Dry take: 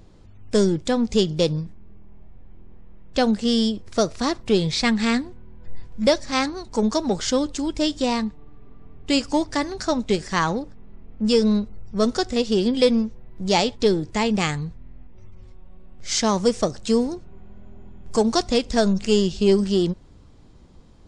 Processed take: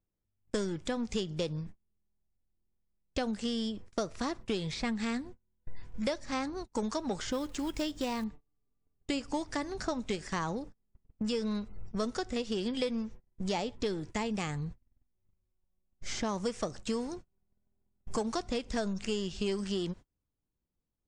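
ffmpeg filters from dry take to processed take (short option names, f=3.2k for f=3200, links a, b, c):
-filter_complex "[0:a]asettb=1/sr,asplit=3[a][b][c];[a]atrim=end=7.304[d];[b]atrim=start=7.3:end=8.24,asetpts=PTS-STARTPTS,afade=t=in:d=0.004:c=qsin,afade=t=out:st=0.936:d=0.004:c=qsin,acrusher=bits=6:mode=log:mix=0:aa=0.000001[e];[c]atrim=start=8.236[f];[d][e]acrossfade=d=0.004:c1=hsin:c2=qsin[g];[g][f]acrossfade=d=0.004:c1=qsin:c2=hsin,agate=range=-36dB:threshold=-33dB:ratio=16:detection=peak,acrossover=split=1000|3700[h][i][j];[h]acompressor=threshold=-32dB:ratio=4[k];[i]acompressor=threshold=-39dB:ratio=4[l];[j]acompressor=threshold=-43dB:ratio=4[m];[k][l][m]amix=inputs=3:normalize=0,equalizer=f=4.2k:t=o:w=0.79:g=-4.5,volume=-1.5dB"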